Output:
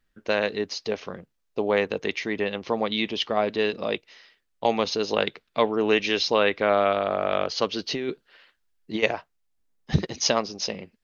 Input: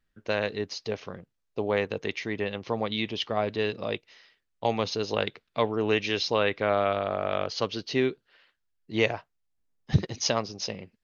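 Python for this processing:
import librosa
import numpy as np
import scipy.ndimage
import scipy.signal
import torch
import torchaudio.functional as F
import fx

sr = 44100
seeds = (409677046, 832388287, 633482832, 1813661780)

y = fx.over_compress(x, sr, threshold_db=-29.0, ratio=-1.0, at=(7.78, 9.02), fade=0.02)
y = fx.peak_eq(y, sr, hz=110.0, db=-13.0, octaves=0.44)
y = y * librosa.db_to_amplitude(4.0)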